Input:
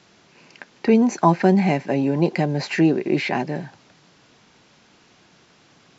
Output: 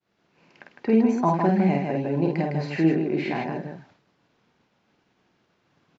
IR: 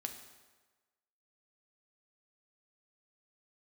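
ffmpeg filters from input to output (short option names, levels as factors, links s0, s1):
-filter_complex "[0:a]asplit=2[s0][s1];[s1]aecho=0:1:49.56|157.4:0.708|0.631[s2];[s0][s2]amix=inputs=2:normalize=0,agate=range=0.0224:threshold=0.00562:ratio=3:detection=peak,aemphasis=mode=reproduction:type=75fm,volume=0.447"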